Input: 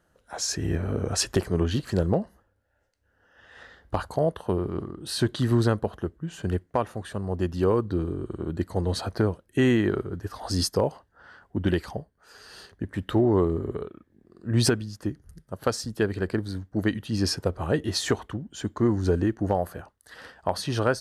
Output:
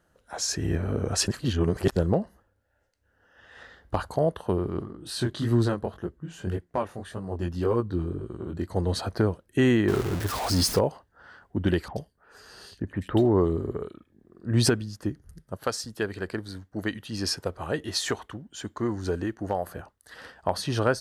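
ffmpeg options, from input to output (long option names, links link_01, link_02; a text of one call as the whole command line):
ffmpeg -i in.wav -filter_complex "[0:a]asplit=3[link_01][link_02][link_03];[link_01]afade=type=out:start_time=4.82:duration=0.02[link_04];[link_02]flanger=delay=16.5:depth=7.3:speed=1.8,afade=type=in:start_time=4.82:duration=0.02,afade=type=out:start_time=8.7:duration=0.02[link_05];[link_03]afade=type=in:start_time=8.7:duration=0.02[link_06];[link_04][link_05][link_06]amix=inputs=3:normalize=0,asettb=1/sr,asplit=3[link_07][link_08][link_09];[link_07]atrim=end=9.884[link_10];[link_08]atrim=start=9.88:end=10.79,asetpts=PTS-STARTPTS,afade=type=in:duration=0.004:curve=qsin,afade=type=out:start_time=0.906:duration=0.004:curve=qsin,aeval=exprs='val(0)+0.5*0.0447*sgn(val(0))':channel_layout=same[link_11];[link_09]atrim=start=10.786[link_12];[link_10][link_11]acrossfade=duration=0.004:curve1=hsin:curve2=qsin[link_13];[link_13][link_12]acrossfade=duration=0.004:curve1=qsin:curve2=hsin,asettb=1/sr,asplit=3[link_14][link_15][link_16];[link_14]atrim=end=11.884[link_17];[link_15]atrim=start=11.88:end=14.48,asetpts=PTS-STARTPTS,afade=type=in:duration=0.004:curve=qsin,afade=type=out:start_time=2.596:duration=0.004:curve=qsin,acrossover=split=2400[link_18][link_19];[link_19]adelay=80[link_20];[link_18][link_20]amix=inputs=2:normalize=0,atrim=end_sample=114660[link_21];[link_16]atrim=start=14.476[link_22];[link_17][link_21]acrossfade=duration=0.004:curve1=hsin:curve2=qsin[link_23];[link_23][link_22]acrossfade=duration=0.004:curve1=qsin:curve2=hsin,asettb=1/sr,asplit=3[link_24][link_25][link_26];[link_24]atrim=end=15.574[link_27];[link_25]atrim=start=15.57:end=19.67,asetpts=PTS-STARTPTS,afade=type=in:duration=0.004:curve=qsin,afade=type=out:start_time=4.096:duration=0.004:curve=qsin,lowshelf=frequency=480:gain=-8[link_28];[link_26]atrim=start=19.666[link_29];[link_27][link_28]acrossfade=duration=0.004:curve1=hsin:curve2=qsin[link_30];[link_30][link_29]acrossfade=duration=0.004:curve1=qsin:curve2=hsin,asplit=3[link_31][link_32][link_33];[link_31]atrim=end=1.282[link_34];[link_32]atrim=start=1.278:end=1.962,asetpts=PTS-STARTPTS,areverse[link_35];[link_33]atrim=start=1.958[link_36];[link_34][link_35]acrossfade=duration=0.004:curve1=hsin:curve2=hsin[link_37];[link_37][link_36]acrossfade=duration=0.004:curve1=hsin:curve2=hsin" out.wav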